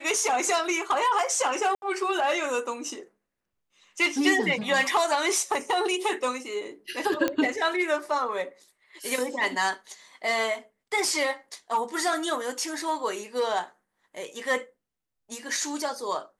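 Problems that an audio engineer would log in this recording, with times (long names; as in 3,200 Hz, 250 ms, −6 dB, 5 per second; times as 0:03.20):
0:01.75–0:01.82: drop-out 71 ms
0:07.28: click −11 dBFS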